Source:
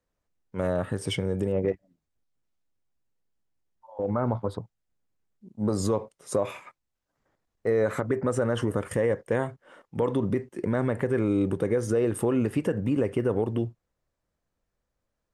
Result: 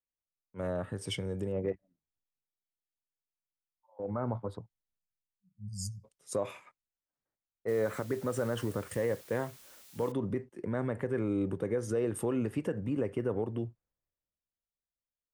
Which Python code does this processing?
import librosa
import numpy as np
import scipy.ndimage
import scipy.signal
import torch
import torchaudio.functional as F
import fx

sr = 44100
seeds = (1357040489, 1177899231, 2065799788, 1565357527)

y = fx.spec_erase(x, sr, start_s=5.0, length_s=1.04, low_hz=210.0, high_hz=4500.0)
y = fx.quant_dither(y, sr, seeds[0], bits=8, dither='triangular', at=(7.68, 10.12))
y = fx.band_widen(y, sr, depth_pct=40)
y = F.gain(torch.from_numpy(y), -7.0).numpy()